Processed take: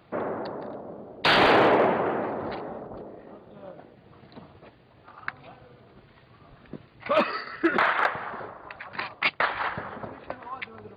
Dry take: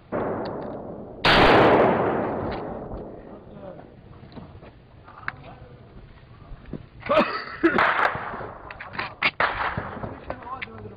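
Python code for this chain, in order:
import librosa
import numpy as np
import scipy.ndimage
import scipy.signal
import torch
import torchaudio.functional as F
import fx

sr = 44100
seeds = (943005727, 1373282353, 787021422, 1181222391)

y = fx.highpass(x, sr, hz=220.0, slope=6)
y = y * librosa.db_to_amplitude(-2.5)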